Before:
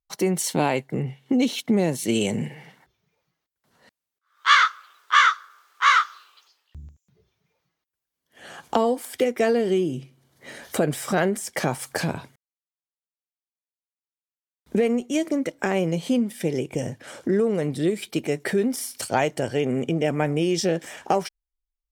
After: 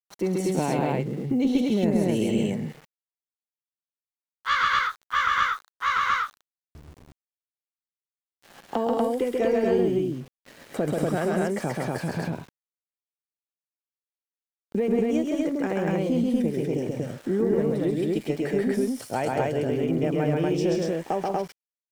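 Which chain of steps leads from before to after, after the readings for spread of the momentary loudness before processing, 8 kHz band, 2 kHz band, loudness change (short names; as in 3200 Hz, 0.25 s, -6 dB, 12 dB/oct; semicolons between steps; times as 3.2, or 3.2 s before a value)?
12 LU, -10.0 dB, -5.0 dB, -2.0 dB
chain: HPF 180 Hz 6 dB/oct; tilt -2.5 dB/oct; loudspeakers at several distances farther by 46 m -2 dB, 62 m -11 dB, 82 m -1 dB; added harmonics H 2 -18 dB, 3 -40 dB, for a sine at -3 dBFS; sample gate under -38 dBFS; gain -6.5 dB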